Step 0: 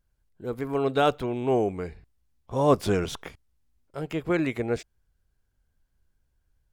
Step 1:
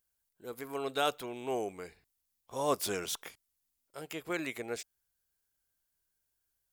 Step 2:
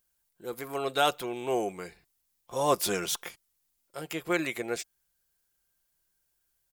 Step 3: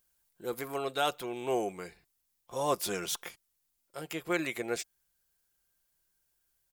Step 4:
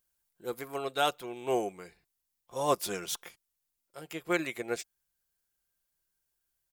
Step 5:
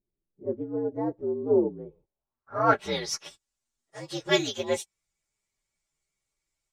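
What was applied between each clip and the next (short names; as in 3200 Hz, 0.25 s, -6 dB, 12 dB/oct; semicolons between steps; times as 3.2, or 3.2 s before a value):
RIAA curve recording; gain -7.5 dB
comb 5.7 ms, depth 37%; gain +5 dB
vocal rider within 4 dB 0.5 s; gain -2.5 dB
upward expander 1.5:1, over -41 dBFS; gain +3 dB
inharmonic rescaling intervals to 119%; low-pass sweep 340 Hz -> 7400 Hz, 1.83–3.25; gain +8 dB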